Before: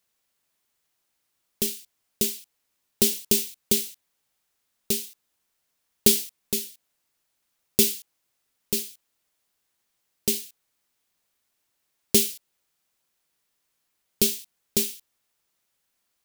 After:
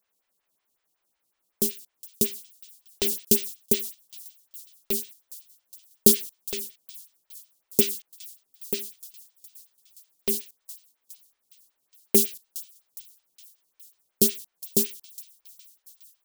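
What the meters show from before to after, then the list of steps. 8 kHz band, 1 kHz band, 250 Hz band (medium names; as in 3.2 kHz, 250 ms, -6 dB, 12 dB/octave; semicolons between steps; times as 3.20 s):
-1.5 dB, no reading, +0.5 dB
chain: feedback echo behind a high-pass 413 ms, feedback 64%, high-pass 3.5 kHz, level -18 dB; lamp-driven phase shifter 5.4 Hz; trim +2.5 dB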